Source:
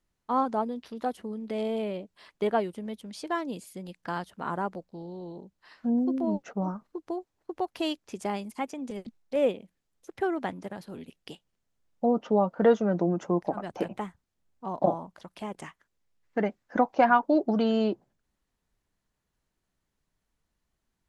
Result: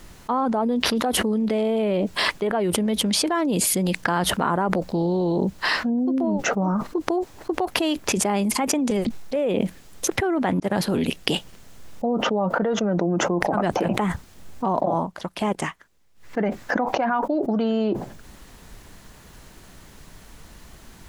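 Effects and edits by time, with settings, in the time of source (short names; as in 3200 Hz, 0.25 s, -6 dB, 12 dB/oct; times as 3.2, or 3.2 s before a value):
10.6–11.31 fade in
14.65–16.38 dip -19.5 dB, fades 0.23 s
whole clip: dynamic EQ 5400 Hz, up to -5 dB, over -51 dBFS, Q 0.9; fast leveller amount 100%; gain -5.5 dB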